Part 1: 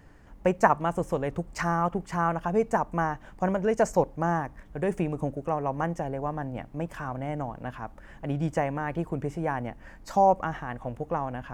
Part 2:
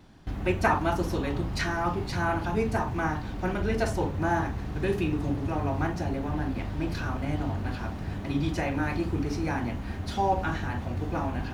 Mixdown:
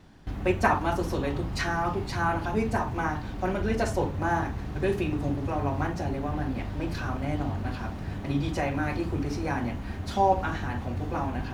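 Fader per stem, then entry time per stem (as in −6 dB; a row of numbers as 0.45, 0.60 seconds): −7.0, −0.5 decibels; 0.00, 0.00 seconds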